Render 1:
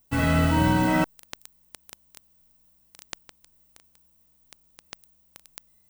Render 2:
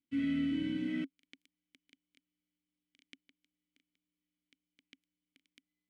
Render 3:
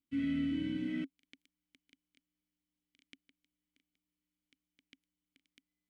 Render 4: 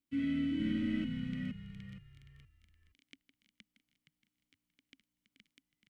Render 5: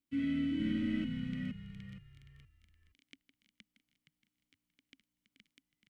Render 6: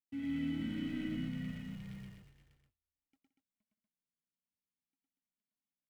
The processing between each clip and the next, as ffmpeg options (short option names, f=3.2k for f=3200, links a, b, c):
-filter_complex "[0:a]asplit=3[a][b][c];[a]bandpass=f=270:t=q:w=8,volume=0dB[d];[b]bandpass=f=2.29k:t=q:w=8,volume=-6dB[e];[c]bandpass=f=3.01k:t=q:w=8,volume=-9dB[f];[d][e][f]amix=inputs=3:normalize=0,volume=-3dB"
-af "lowshelf=f=81:g=11,volume=-2dB"
-filter_complex "[0:a]asplit=5[a][b][c][d][e];[b]adelay=469,afreqshift=-58,volume=-3dB[f];[c]adelay=938,afreqshift=-116,volume=-12.6dB[g];[d]adelay=1407,afreqshift=-174,volume=-22.3dB[h];[e]adelay=1876,afreqshift=-232,volume=-31.9dB[i];[a][f][g][h][i]amix=inputs=5:normalize=0"
-af anull
-af "aeval=exprs='val(0)+0.5*0.00316*sgn(val(0))':c=same,agate=range=-44dB:threshold=-50dB:ratio=16:detection=peak,aecho=1:1:110.8|172|239.1:1|0.251|0.631,volume=-7dB"